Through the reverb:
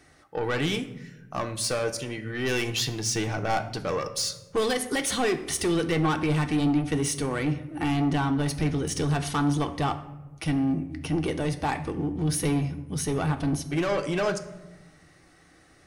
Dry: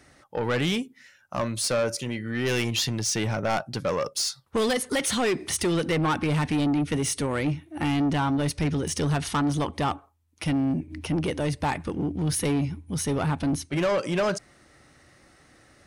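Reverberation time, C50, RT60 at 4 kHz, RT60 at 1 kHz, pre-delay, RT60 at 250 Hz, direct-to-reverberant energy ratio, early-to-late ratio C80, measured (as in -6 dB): 1.1 s, 12.5 dB, 0.55 s, 0.95 s, 3 ms, 1.6 s, 5.5 dB, 15.5 dB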